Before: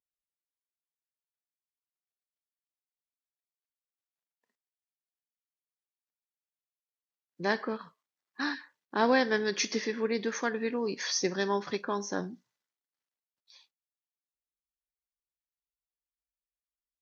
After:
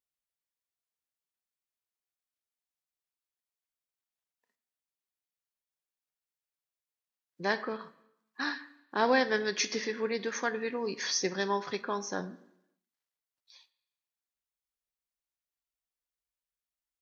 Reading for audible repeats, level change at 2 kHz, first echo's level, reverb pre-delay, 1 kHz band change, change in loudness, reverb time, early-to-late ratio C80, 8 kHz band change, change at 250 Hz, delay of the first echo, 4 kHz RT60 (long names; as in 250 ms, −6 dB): no echo audible, 0.0 dB, no echo audible, 3 ms, 0.0 dB, −1.0 dB, 0.85 s, 19.5 dB, can't be measured, −3.5 dB, no echo audible, 0.90 s